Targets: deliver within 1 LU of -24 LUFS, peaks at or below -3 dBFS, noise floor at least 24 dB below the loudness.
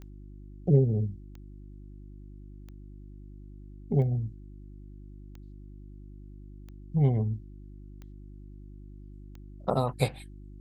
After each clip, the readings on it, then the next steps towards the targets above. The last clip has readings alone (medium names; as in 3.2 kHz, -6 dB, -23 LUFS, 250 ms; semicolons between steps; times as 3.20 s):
clicks found 8; hum 50 Hz; highest harmonic 350 Hz; hum level -44 dBFS; loudness -28.5 LUFS; peak level -9.5 dBFS; loudness target -24.0 LUFS
-> de-click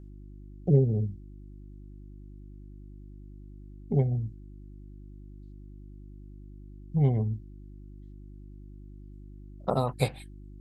clicks found 0; hum 50 Hz; highest harmonic 350 Hz; hum level -44 dBFS
-> de-hum 50 Hz, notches 7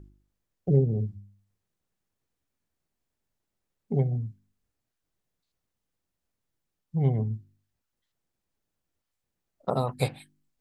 hum not found; loudness -28.5 LUFS; peak level -10.0 dBFS; loudness target -24.0 LUFS
-> trim +4.5 dB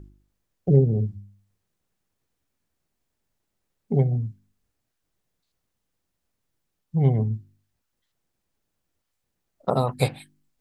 loudness -24.0 LUFS; peak level -5.5 dBFS; noise floor -79 dBFS